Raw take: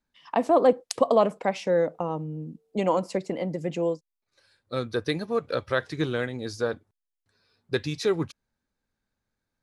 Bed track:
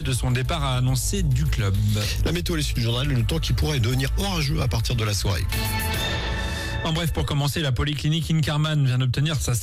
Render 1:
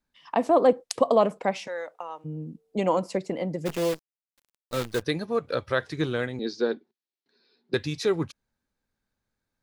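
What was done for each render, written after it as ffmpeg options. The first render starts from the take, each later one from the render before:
-filter_complex "[0:a]asplit=3[a][b][c];[a]afade=t=out:st=1.66:d=0.02[d];[b]highpass=1k,afade=t=in:st=1.66:d=0.02,afade=t=out:st=2.24:d=0.02[e];[c]afade=t=in:st=2.24:d=0.02[f];[d][e][f]amix=inputs=3:normalize=0,asplit=3[g][h][i];[g]afade=t=out:st=3.65:d=0.02[j];[h]acrusher=bits=6:dc=4:mix=0:aa=0.000001,afade=t=in:st=3.65:d=0.02,afade=t=out:st=5.01:d=0.02[k];[i]afade=t=in:st=5.01:d=0.02[l];[j][k][l]amix=inputs=3:normalize=0,asettb=1/sr,asplit=3[m][n][o];[m]atrim=end=6.394[p];[n]atrim=start=6.39:end=7.74,asetpts=PTS-STARTPTS,afade=t=in:d=0.004:c=qsin,afade=t=out:st=1.346:d=0.004:c=qsin,highpass=f=210:w=0.5412,highpass=f=210:w=1.3066,equalizer=f=230:t=q:w=4:g=6,equalizer=f=380:t=q:w=4:g=10,equalizer=f=600:t=q:w=4:g=-5,equalizer=f=1.2k:t=q:w=4:g=-8,equalizer=f=4.1k:t=q:w=4:g=6,lowpass=f=5.3k:w=0.5412,lowpass=f=5.3k:w=1.3066[q];[o]atrim=start=7.736[r];[p][q]acrossfade=d=0.004:c1=hsin:c2=qsin[s];[s][r]acrossfade=d=0.004:c1=qsin:c2=hsin"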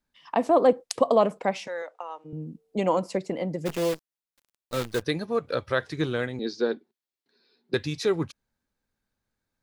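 -filter_complex "[0:a]asettb=1/sr,asplit=3[a][b][c];[a]atrim=end=1.824[d];[b]atrim=start=1.82:end=2.33,asetpts=PTS-STARTPTS,afade=t=in:d=0.004:c=qsin,afade=t=out:st=0.506:d=0.004:c=qsin,highpass=320,lowpass=7.7k[e];[c]atrim=start=2.326[f];[d][e]acrossfade=d=0.004:c1=hsin:c2=qsin[g];[g][f]acrossfade=d=0.004:c1=qsin:c2=hsin"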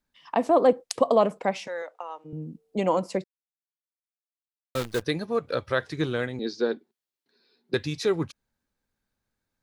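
-filter_complex "[0:a]asplit=3[a][b][c];[a]atrim=end=3.24,asetpts=PTS-STARTPTS,afade=t=out:st=3.236:d=0.004:c=hsin[d];[b]atrim=start=3.24:end=4.75,asetpts=PTS-STARTPTS,volume=0[e];[c]atrim=start=4.75,asetpts=PTS-STARTPTS,afade=t=in:d=0.004:c=hsin[f];[d][e][f]concat=n=3:v=0:a=1"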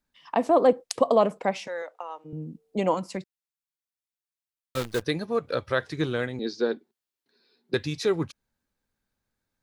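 -filter_complex "[0:a]asettb=1/sr,asplit=3[a][b][c];[a]atrim=end=2.944[d];[b]atrim=start=2.94:end=4.77,asetpts=PTS-STARTPTS,afade=t=in:d=0.004:c=qsin,afade=t=out:st=1.826:d=0.004:c=qsin,equalizer=f=510:t=o:w=1.3:g=-9.5[e];[c]atrim=start=4.766[f];[d][e]acrossfade=d=0.004:c1=hsin:c2=qsin[g];[g][f]acrossfade=d=0.004:c1=qsin:c2=hsin"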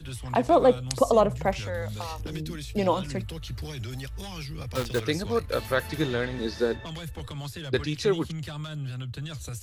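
-filter_complex "[1:a]volume=-13.5dB[a];[0:a][a]amix=inputs=2:normalize=0"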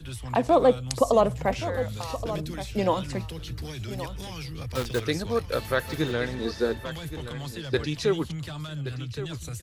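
-af "aecho=1:1:1123:0.237"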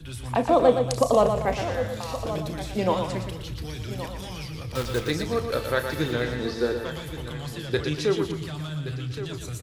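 -filter_complex "[0:a]asplit=2[a][b];[b]adelay=33,volume=-12.5dB[c];[a][c]amix=inputs=2:normalize=0,aecho=1:1:118|236|354|472|590:0.447|0.192|0.0826|0.0355|0.0153"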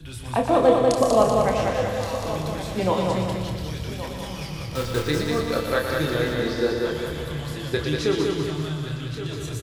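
-filter_complex "[0:a]asplit=2[a][b];[b]adelay=27,volume=-6.5dB[c];[a][c]amix=inputs=2:normalize=0,asplit=2[d][e];[e]aecho=0:1:192|384|576|768|960|1152|1344:0.668|0.334|0.167|0.0835|0.0418|0.0209|0.0104[f];[d][f]amix=inputs=2:normalize=0"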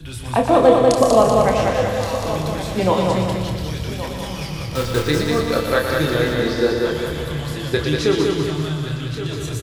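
-af "volume=5dB,alimiter=limit=-1dB:level=0:latency=1"

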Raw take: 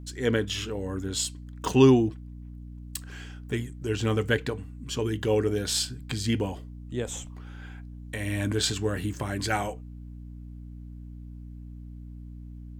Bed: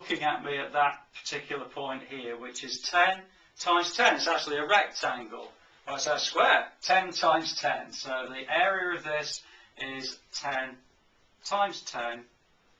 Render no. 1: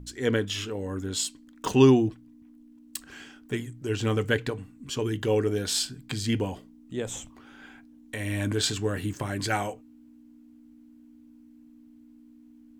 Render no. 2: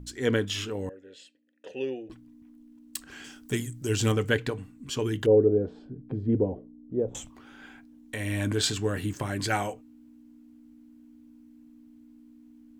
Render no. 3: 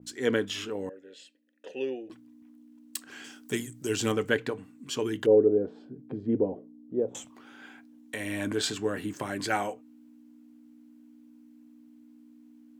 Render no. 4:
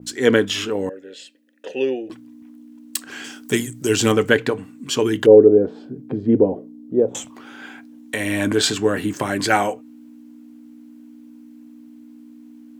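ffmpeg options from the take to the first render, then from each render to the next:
-af "bandreject=f=60:t=h:w=4,bandreject=f=120:t=h:w=4,bandreject=f=180:t=h:w=4"
-filter_complex "[0:a]asettb=1/sr,asplit=3[a][b][c];[a]atrim=end=0.894[d];[b]atrim=start=0.89:end=2.1,asetpts=PTS-STARTPTS,afade=t=in:d=0.004:c=qsin,afade=t=out:st=1.206:d=0.004:c=qsin,asplit=3[e][f][g];[e]bandpass=f=530:t=q:w=8,volume=0dB[h];[f]bandpass=f=1.84k:t=q:w=8,volume=-6dB[i];[g]bandpass=f=2.48k:t=q:w=8,volume=-9dB[j];[h][i][j]amix=inputs=3:normalize=0[k];[c]atrim=start=2.096[l];[d][k]acrossfade=d=0.004:c1=hsin:c2=qsin[m];[m][l]acrossfade=d=0.004:c1=qsin:c2=hsin,asettb=1/sr,asplit=3[n][o][p];[n]atrim=end=3.244[q];[o]atrim=start=3.24:end=4.12,asetpts=PTS-STARTPTS,afade=t=in:d=0.004:c=qsin,afade=t=out:st=0.876:d=0.004:c=qsin,bass=f=250:g=3,treble=f=4k:g=11[r];[p]atrim=start=4.116[s];[q][r]acrossfade=d=0.004:c1=hsin:c2=qsin[t];[t][s]acrossfade=d=0.004:c1=qsin:c2=hsin,asettb=1/sr,asplit=3[u][v][w];[u]atrim=end=5.264[x];[v]atrim=start=5.26:end=7.15,asetpts=PTS-STARTPTS,afade=t=in:d=0.004:c=qsin,afade=t=out:st=1.886:d=0.004:c=qsin,lowpass=f=490:t=q:w=2[y];[w]atrim=start=7.146[z];[x][y]acrossfade=d=0.004:c1=hsin:c2=qsin[aa];[aa][z]acrossfade=d=0.004:c1=qsin:c2=hsin"
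-af "highpass=200,adynamicequalizer=threshold=0.00501:dfrequency=2400:dqfactor=0.7:tfrequency=2400:tqfactor=0.7:attack=5:release=100:ratio=0.375:range=3:mode=cutabove:tftype=highshelf"
-af "volume=11dB,alimiter=limit=-1dB:level=0:latency=1"

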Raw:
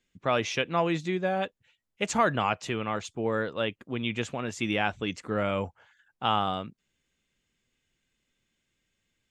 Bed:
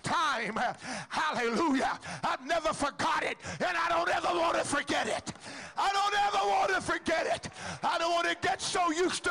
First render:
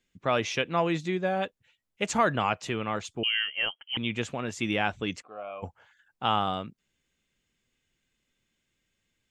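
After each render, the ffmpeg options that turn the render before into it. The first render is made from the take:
-filter_complex "[0:a]asettb=1/sr,asplit=3[a][b][c];[a]atrim=end=3.234[d];[b]atrim=start=3.23:end=3.97,asetpts=PTS-STARTPTS,afade=t=in:d=0.004:c=qsin,afade=t=out:st=0.736:d=0.004:c=qsin,lowpass=f=2.8k:t=q:w=0.5098,lowpass=f=2.8k:t=q:w=0.6013,lowpass=f=2.8k:t=q:w=0.9,lowpass=f=2.8k:t=q:w=2.563,afreqshift=-3300[e];[c]atrim=start=3.966[f];[d][e]acrossfade=d=0.004:c1=hsin:c2=qsin[g];[g][f]acrossfade=d=0.004:c1=qsin:c2=hsin,asplit=3[h][i][j];[h]afade=t=out:st=5.21:d=0.02[k];[i]asplit=3[l][m][n];[l]bandpass=f=730:t=q:w=8,volume=0dB[o];[m]bandpass=f=1.09k:t=q:w=8,volume=-6dB[p];[n]bandpass=f=2.44k:t=q:w=8,volume=-9dB[q];[o][p][q]amix=inputs=3:normalize=0,afade=t=in:st=5.21:d=0.02,afade=t=out:st=5.62:d=0.02[r];[j]afade=t=in:st=5.62:d=0.02[s];[k][r][s]amix=inputs=3:normalize=0"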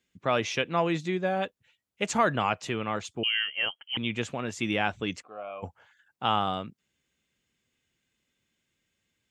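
-af "highpass=61"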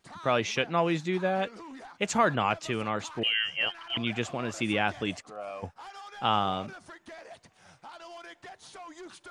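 -filter_complex "[1:a]volume=-17dB[a];[0:a][a]amix=inputs=2:normalize=0"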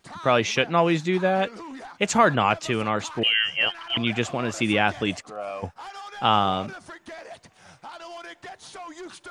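-af "volume=6dB"

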